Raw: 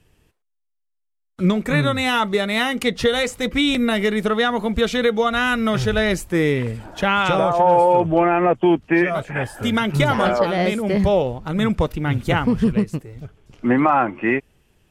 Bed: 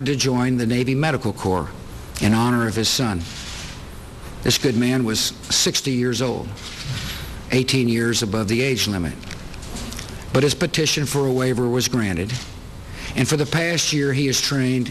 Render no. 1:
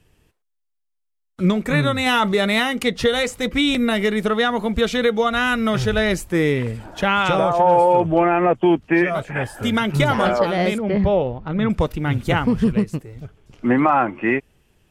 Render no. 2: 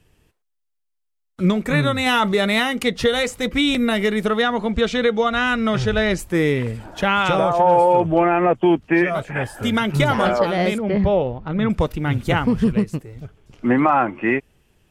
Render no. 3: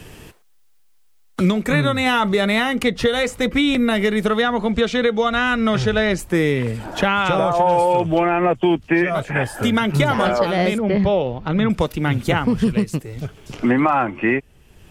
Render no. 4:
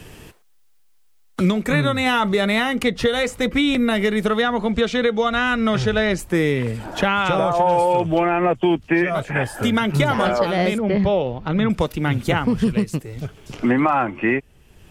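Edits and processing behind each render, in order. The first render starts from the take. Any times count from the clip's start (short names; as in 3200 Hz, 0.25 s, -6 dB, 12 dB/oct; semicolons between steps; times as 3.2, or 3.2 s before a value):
2.06–2.6 fast leveller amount 50%; 10.78–11.7 air absorption 250 m
4.42–6.19 Bessel low-pass 6900 Hz, order 4
three-band squash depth 70%
gain -1 dB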